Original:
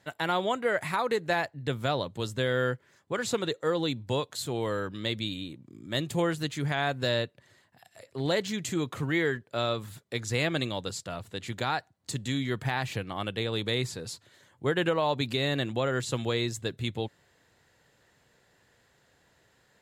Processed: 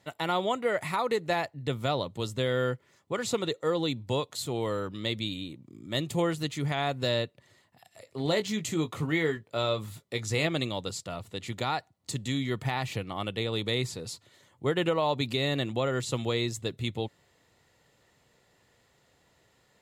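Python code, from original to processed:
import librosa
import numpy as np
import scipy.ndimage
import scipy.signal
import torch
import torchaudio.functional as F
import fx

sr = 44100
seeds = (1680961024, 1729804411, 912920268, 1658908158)

y = fx.doubler(x, sr, ms=19.0, db=-9.0, at=(8.05, 10.47))
y = fx.notch(y, sr, hz=1600.0, q=5.5)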